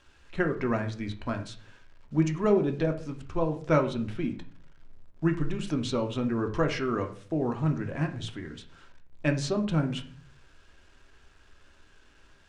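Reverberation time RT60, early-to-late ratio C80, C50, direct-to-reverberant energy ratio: 0.50 s, 16.0 dB, 12.0 dB, 4.5 dB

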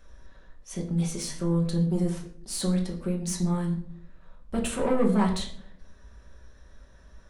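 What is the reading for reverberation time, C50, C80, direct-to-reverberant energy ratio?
0.60 s, 8.5 dB, 11.5 dB, −1.0 dB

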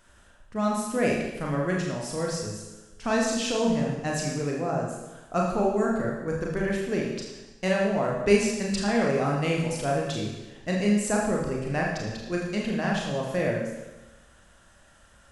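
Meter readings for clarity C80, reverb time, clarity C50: 4.0 dB, 1.1 s, 2.0 dB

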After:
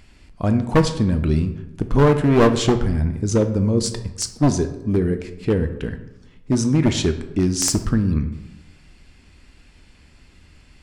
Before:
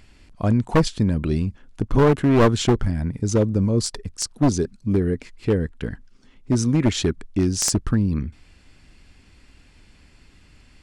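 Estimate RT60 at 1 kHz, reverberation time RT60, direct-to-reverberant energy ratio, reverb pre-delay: 0.95 s, 1.0 s, 8.0 dB, 7 ms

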